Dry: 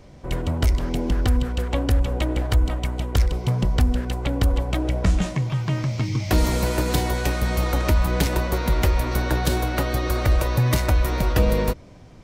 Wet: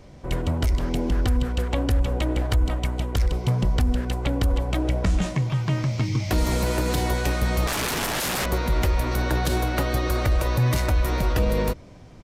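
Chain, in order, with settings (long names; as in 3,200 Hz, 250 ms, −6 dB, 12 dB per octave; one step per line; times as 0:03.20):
0:07.67–0:08.46: wrap-around overflow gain 21 dB
brickwall limiter −13.5 dBFS, peak gain reduction 5.5 dB
downsampling to 32,000 Hz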